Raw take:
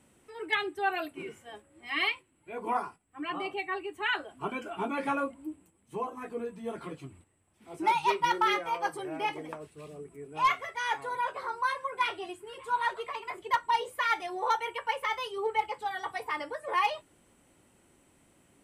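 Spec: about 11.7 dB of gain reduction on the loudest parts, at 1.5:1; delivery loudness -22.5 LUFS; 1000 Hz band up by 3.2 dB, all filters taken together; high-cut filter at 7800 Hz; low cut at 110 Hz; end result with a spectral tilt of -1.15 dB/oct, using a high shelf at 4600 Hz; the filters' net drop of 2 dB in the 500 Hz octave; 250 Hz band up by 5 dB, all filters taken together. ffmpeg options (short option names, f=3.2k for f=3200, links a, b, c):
-af "highpass=110,lowpass=7.8k,equalizer=f=250:t=o:g=9,equalizer=f=500:t=o:g=-7,equalizer=f=1k:t=o:g=4.5,highshelf=f=4.6k:g=8.5,acompressor=threshold=-52dB:ratio=1.5,volume=17dB"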